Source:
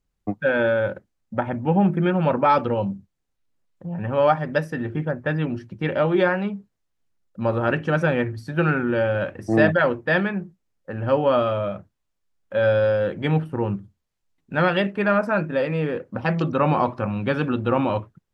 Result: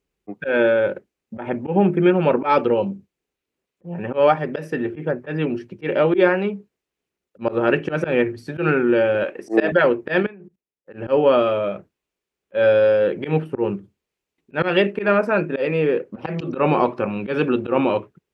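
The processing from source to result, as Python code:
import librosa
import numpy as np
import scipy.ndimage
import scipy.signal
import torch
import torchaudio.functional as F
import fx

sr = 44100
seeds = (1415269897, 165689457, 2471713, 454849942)

y = fx.highpass(x, sr, hz=280.0, slope=12, at=(9.23, 9.72))
y = fx.level_steps(y, sr, step_db=22, at=(10.22, 10.92), fade=0.02)
y = fx.graphic_eq_15(y, sr, hz=(100, 400, 2500), db=(-9, 11, 7))
y = fx.auto_swell(y, sr, attack_ms=100.0)
y = scipy.signal.sosfilt(scipy.signal.butter(2, 55.0, 'highpass', fs=sr, output='sos'), y)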